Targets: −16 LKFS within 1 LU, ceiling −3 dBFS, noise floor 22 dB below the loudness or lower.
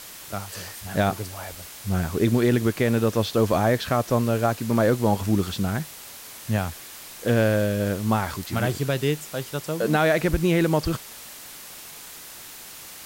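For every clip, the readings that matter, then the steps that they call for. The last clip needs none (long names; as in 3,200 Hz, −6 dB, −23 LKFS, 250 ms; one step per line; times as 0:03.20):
background noise floor −42 dBFS; target noise floor −46 dBFS; integrated loudness −24.0 LKFS; sample peak −10.0 dBFS; target loudness −16.0 LKFS
→ noise reduction from a noise print 6 dB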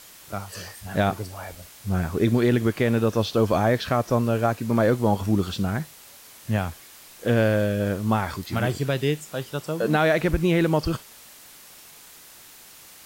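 background noise floor −48 dBFS; integrated loudness −24.0 LKFS; sample peak −10.0 dBFS; target loudness −16.0 LKFS
→ level +8 dB
brickwall limiter −3 dBFS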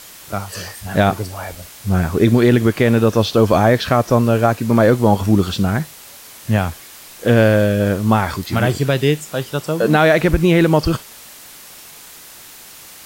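integrated loudness −16.0 LKFS; sample peak −3.0 dBFS; background noise floor −40 dBFS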